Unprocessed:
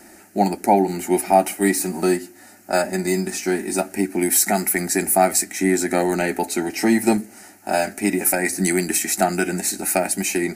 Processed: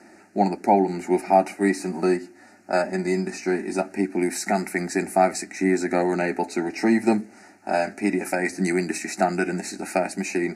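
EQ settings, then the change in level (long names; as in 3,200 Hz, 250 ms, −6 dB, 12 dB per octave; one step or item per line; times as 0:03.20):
band-pass filter 110–6,300 Hz
Butterworth band-reject 3,300 Hz, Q 2.9
high-shelf EQ 4,300 Hz −6 dB
−2.0 dB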